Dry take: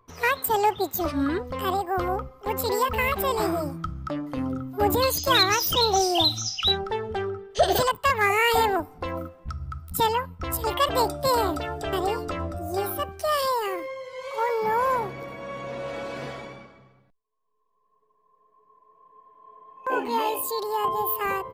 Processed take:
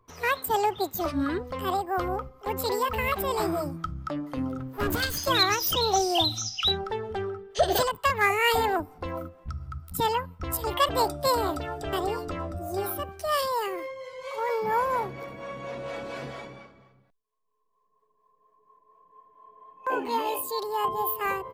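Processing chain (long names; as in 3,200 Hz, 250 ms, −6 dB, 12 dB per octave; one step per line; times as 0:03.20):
0:04.59–0:05.26: lower of the sound and its delayed copy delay 0.64 ms
two-band tremolo in antiphase 4.3 Hz, depth 50%, crossover 410 Hz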